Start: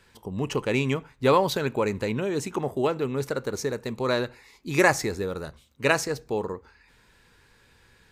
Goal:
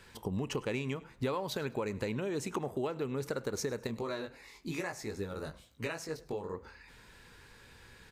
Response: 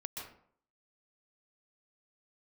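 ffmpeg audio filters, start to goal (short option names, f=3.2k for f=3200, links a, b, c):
-filter_complex "[0:a]acompressor=threshold=-34dB:ratio=10,asettb=1/sr,asplit=3[a][b][c];[a]atrim=end=3.874[d];[b]atrim=start=3.87:end=6.54,asetpts=PTS-STARTPTS,afade=t=in:d=0.004:c=qsin,afade=t=out:st=2.666:d=0.004:c=qsin,flanger=delay=17.5:depth=3.1:speed=1[e];[c]atrim=start=6.536[f];[d][e]acrossfade=d=0.004:c1=hsin:c2=qsin[g];[g][f]acrossfade=d=0.004:c1=qsin:c2=hsin,asplit=3[h][i][j];[i]adelay=103,afreqshift=35,volume=-22dB[k];[j]adelay=206,afreqshift=70,volume=-31.6dB[l];[h][k][l]amix=inputs=3:normalize=0,volume=2.5dB"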